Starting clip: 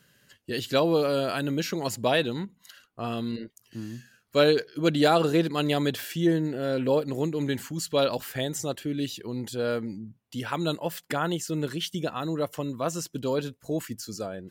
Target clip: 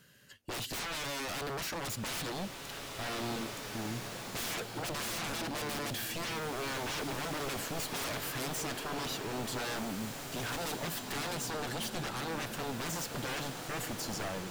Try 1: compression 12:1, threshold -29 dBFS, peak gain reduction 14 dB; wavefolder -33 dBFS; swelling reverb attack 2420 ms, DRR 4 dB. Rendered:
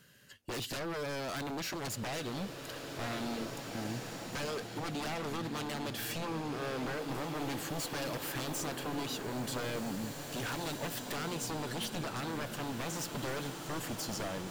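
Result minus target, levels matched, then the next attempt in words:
compression: peak gain reduction +14 dB
wavefolder -33 dBFS; swelling reverb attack 2420 ms, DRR 4 dB

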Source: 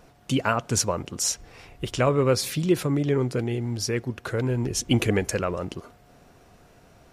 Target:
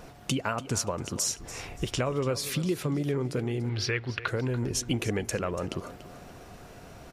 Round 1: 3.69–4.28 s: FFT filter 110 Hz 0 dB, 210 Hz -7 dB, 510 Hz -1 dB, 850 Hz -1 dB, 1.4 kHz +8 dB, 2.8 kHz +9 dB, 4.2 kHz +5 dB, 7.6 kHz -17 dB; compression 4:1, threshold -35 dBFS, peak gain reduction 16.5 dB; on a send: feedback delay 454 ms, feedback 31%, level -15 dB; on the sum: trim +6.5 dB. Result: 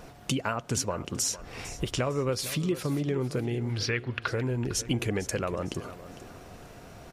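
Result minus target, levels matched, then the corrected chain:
echo 166 ms late
3.69–4.28 s: FFT filter 110 Hz 0 dB, 210 Hz -7 dB, 510 Hz -1 dB, 850 Hz -1 dB, 1.4 kHz +8 dB, 2.8 kHz +9 dB, 4.2 kHz +5 dB, 7.6 kHz -17 dB; compression 4:1, threshold -35 dBFS, peak gain reduction 16.5 dB; on a send: feedback delay 288 ms, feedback 31%, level -15 dB; on the sum: trim +6.5 dB

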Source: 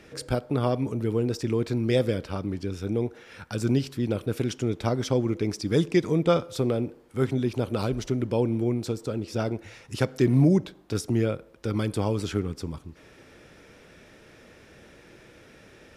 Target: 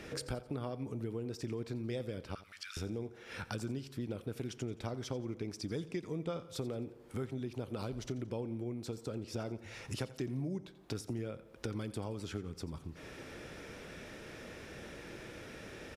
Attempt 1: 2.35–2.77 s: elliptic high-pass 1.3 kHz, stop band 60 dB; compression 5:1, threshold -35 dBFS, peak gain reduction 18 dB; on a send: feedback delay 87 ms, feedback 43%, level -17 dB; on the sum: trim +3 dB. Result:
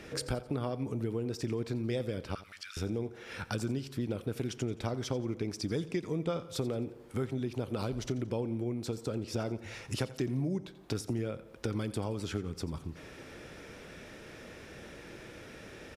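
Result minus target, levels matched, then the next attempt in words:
compression: peak gain reduction -5 dB
2.35–2.77 s: elliptic high-pass 1.3 kHz, stop band 60 dB; compression 5:1, threshold -41.5 dBFS, peak gain reduction 23 dB; on a send: feedback delay 87 ms, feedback 43%, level -17 dB; on the sum: trim +3 dB

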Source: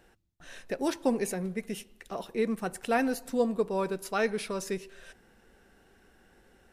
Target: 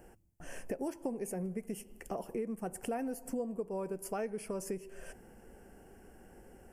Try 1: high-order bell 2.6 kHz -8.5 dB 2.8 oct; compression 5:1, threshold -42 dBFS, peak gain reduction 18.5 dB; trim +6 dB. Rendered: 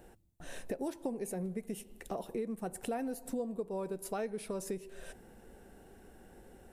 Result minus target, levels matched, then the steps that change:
4 kHz band +3.0 dB
add first: Butterworth band-stop 3.8 kHz, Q 2.7

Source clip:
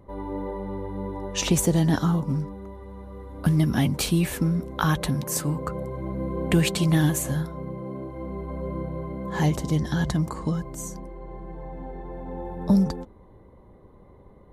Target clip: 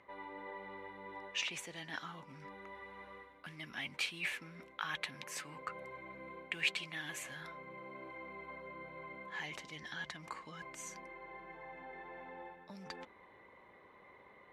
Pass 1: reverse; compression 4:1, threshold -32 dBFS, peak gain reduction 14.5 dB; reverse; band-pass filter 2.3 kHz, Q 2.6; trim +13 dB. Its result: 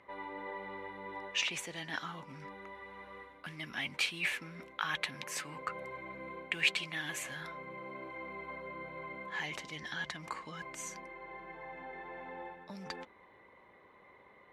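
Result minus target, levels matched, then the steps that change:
compression: peak gain reduction -4.5 dB
change: compression 4:1, threshold -38 dBFS, peak gain reduction 19 dB

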